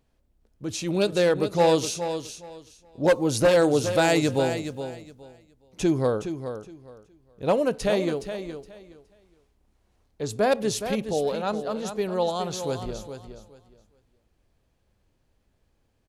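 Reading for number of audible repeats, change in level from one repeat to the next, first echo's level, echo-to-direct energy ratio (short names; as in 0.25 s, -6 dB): 2, -13.5 dB, -9.5 dB, -9.5 dB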